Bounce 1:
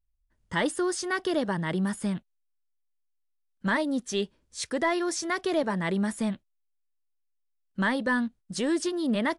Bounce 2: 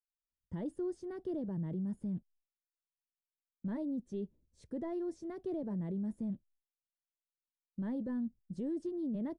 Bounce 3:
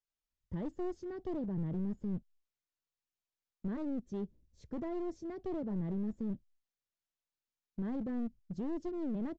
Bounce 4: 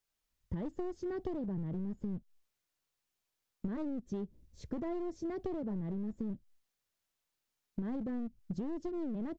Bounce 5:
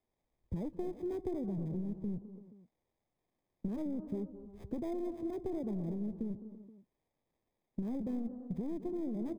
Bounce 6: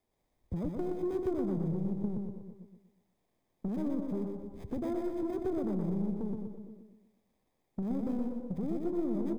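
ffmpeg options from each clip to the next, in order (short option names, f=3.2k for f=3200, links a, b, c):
-af "agate=range=-33dB:threshold=-55dB:ratio=3:detection=peak,firequalizer=gain_entry='entry(130,0);entry(1200,-26);entry(2400,-29)':delay=0.05:min_phase=1,alimiter=level_in=4.5dB:limit=-24dB:level=0:latency=1:release=11,volume=-4.5dB,volume=-3dB"
-af "aresample=16000,aeval=exprs='clip(val(0),-1,0.0112)':c=same,aresample=44100,lowshelf=f=120:g=7.5"
-af "acompressor=threshold=-42dB:ratio=10,volume=8dB"
-filter_complex "[0:a]acrossover=split=160|1000[a][b][c];[b]aecho=1:1:210|242|314|338|477:0.251|0.15|0.1|0.188|0.126[d];[c]acrusher=samples=31:mix=1:aa=0.000001[e];[a][d][e]amix=inputs=3:normalize=0"
-af "asoftclip=type=tanh:threshold=-33dB,aecho=1:1:122|244|366|488|610:0.631|0.271|0.117|0.0502|0.0216,volume=4.5dB"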